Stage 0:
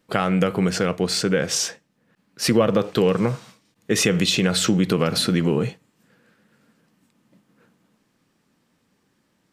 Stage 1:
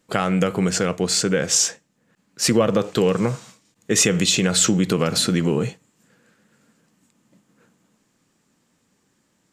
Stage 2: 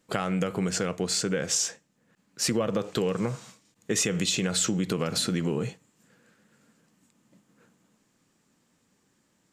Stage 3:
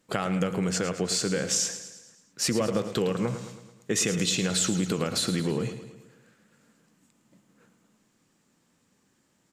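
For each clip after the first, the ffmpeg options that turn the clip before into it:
-af "equalizer=f=7.2k:w=2.4:g=10"
-af "acompressor=threshold=-24dB:ratio=2,volume=-3dB"
-af "aecho=1:1:109|218|327|436|545|654:0.266|0.144|0.0776|0.0419|0.0226|0.0122"

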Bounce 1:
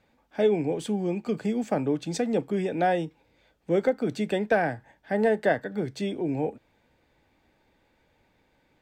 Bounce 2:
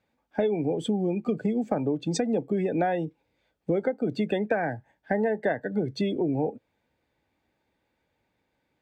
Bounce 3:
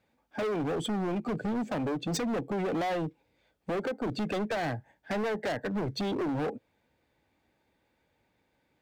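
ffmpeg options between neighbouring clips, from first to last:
-af "highpass=52,afftdn=nr=17:nf=-37,acompressor=threshold=-32dB:ratio=5,volume=8.5dB"
-af "volume=30.5dB,asoftclip=hard,volume=-30.5dB,volume=2dB"

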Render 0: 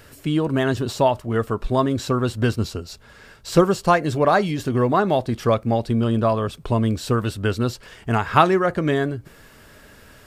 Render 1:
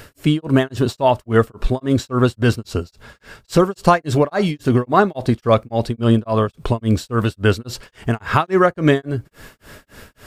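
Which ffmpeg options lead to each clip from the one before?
-af "alimiter=limit=-9.5dB:level=0:latency=1:release=195,tremolo=f=3.6:d=1,volume=8.5dB"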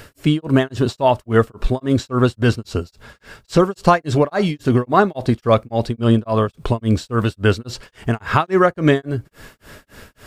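-filter_complex "[0:a]acrossover=split=8500[a][b];[b]acompressor=threshold=-51dB:ratio=4:attack=1:release=60[c];[a][c]amix=inputs=2:normalize=0"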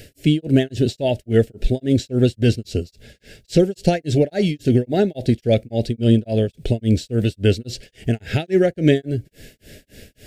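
-af "asuperstop=centerf=1100:order=4:qfactor=0.75"

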